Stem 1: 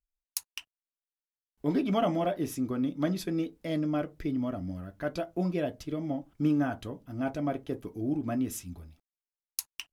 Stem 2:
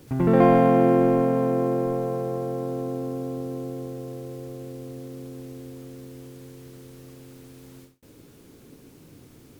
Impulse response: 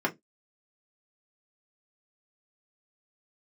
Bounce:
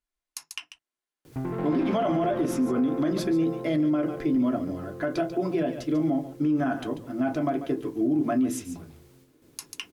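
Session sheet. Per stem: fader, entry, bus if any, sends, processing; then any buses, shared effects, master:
+0.5 dB, 0.00 s, send -6 dB, echo send -8 dB, LPF 11000 Hz 24 dB/oct
-3.0 dB, 1.25 s, send -22.5 dB, echo send -6 dB, soft clip -19 dBFS, distortion -9 dB; auto duck -13 dB, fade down 0.25 s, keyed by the first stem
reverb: on, RT60 0.15 s, pre-delay 3 ms
echo: echo 0.142 s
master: limiter -17.5 dBFS, peak gain reduction 11.5 dB

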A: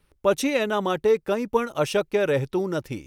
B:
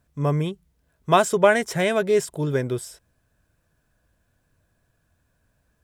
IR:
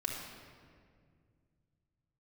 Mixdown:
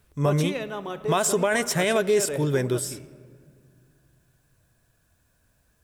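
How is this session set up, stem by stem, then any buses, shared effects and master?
-1.5 dB, 0.00 s, send -20 dB, auto duck -10 dB, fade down 0.70 s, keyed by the second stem
0.0 dB, 0.00 s, send -20.5 dB, high shelf 3700 Hz +7.5 dB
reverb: on, RT60 2.1 s, pre-delay 3 ms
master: limiter -12.5 dBFS, peak gain reduction 10.5 dB

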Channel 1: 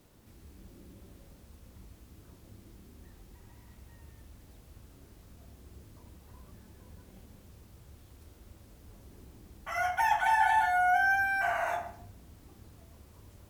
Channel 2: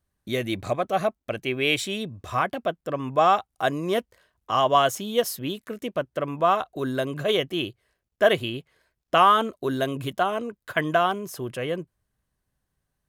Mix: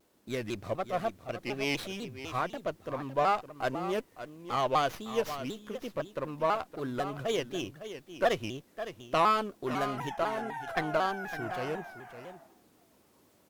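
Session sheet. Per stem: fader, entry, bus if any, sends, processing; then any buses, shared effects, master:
-4.0 dB, 0.00 s, no send, echo send -8.5 dB, Chebyshev high-pass 280 Hz, order 2; compressor 6:1, threshold -34 dBFS, peak gain reduction 11.5 dB
-8.0 dB, 0.00 s, no send, echo send -11.5 dB, running maximum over 5 samples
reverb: off
echo: echo 0.561 s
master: shaped vibrato saw down 4 Hz, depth 160 cents

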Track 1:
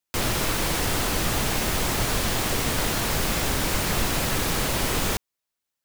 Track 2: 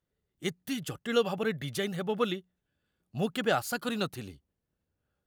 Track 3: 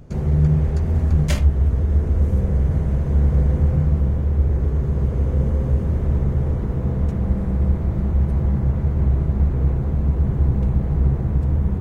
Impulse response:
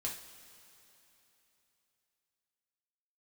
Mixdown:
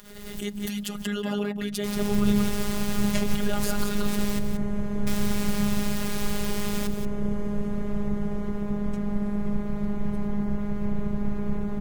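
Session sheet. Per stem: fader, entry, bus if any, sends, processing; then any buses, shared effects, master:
-7.0 dB, 1.70 s, muted 4.39–5.07, bus A, no send, echo send -11 dB, dry
+2.0 dB, 0.00 s, bus A, no send, echo send -10 dB, low shelf 240 Hz +9.5 dB; backwards sustainer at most 60 dB/s
-2.0 dB, 1.85 s, no bus, no send, no echo send, dry
bus A: 0.0 dB, limiter -20 dBFS, peak gain reduction 10 dB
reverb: off
echo: echo 0.18 s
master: robotiser 205 Hz; mismatched tape noise reduction encoder only

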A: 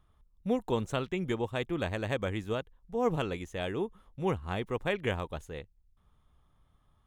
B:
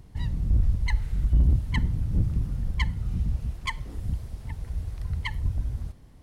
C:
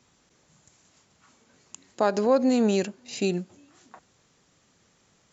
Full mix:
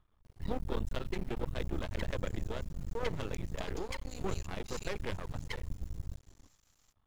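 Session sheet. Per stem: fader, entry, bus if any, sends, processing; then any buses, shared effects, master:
-2.5 dB, 0.00 s, no send, high shelf 7800 Hz -10 dB
-0.5 dB, 0.25 s, no send, flange 0.51 Hz, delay 1.8 ms, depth 6.4 ms, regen +12%; compressor 4:1, threshold -31 dBFS, peak gain reduction 10 dB; modulation noise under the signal 34 dB
-10.5 dB, 1.60 s, no send, tilt +4 dB/oct; compressor 3:1, threshold -35 dBFS, peak gain reduction 12.5 dB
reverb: off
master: half-wave rectifier

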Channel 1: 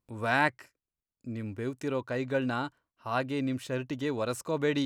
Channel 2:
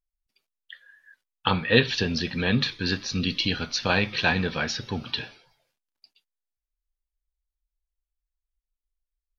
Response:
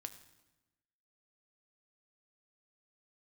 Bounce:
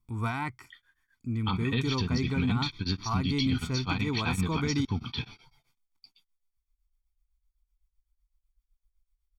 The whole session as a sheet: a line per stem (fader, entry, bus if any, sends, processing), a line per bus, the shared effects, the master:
-2.0 dB, 0.00 s, no send, limiter -21 dBFS, peak gain reduction 9 dB
+0.5 dB, 0.00 s, no send, beating tremolo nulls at 7.9 Hz; auto duck -6 dB, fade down 1.05 s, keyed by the first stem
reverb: off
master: low shelf 150 Hz +8.5 dB; comb 0.9 ms, depth 91%; limiter -18 dBFS, peak gain reduction 10.5 dB

